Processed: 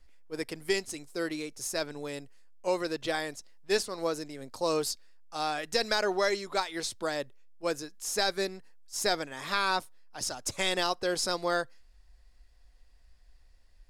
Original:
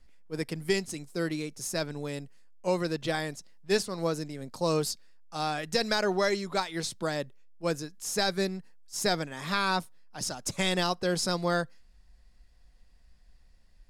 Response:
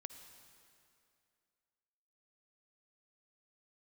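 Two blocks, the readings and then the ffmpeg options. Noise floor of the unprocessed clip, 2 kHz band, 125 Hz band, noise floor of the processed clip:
−58 dBFS, 0.0 dB, −11.0 dB, −58 dBFS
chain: -af "equalizer=frequency=170:width_type=o:width=0.79:gain=-13"

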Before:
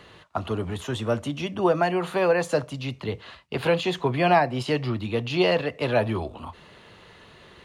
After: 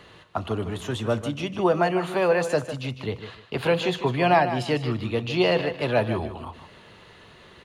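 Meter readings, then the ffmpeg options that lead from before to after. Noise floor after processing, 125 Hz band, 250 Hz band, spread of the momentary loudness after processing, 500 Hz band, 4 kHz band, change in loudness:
−50 dBFS, +0.5 dB, +0.5 dB, 13 LU, +0.5 dB, +0.5 dB, +0.5 dB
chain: -af "aecho=1:1:152|304|456:0.282|0.0705|0.0176"

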